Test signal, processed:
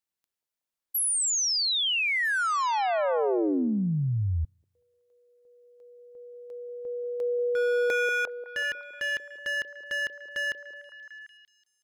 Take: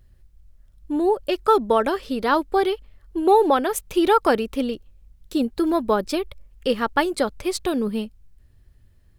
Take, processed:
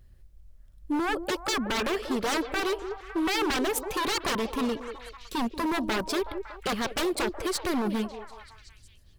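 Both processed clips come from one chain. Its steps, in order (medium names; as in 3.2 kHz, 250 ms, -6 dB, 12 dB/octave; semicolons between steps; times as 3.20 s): wavefolder -21.5 dBFS; repeats whose band climbs or falls 186 ms, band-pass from 450 Hz, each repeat 0.7 oct, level -6 dB; trim -1 dB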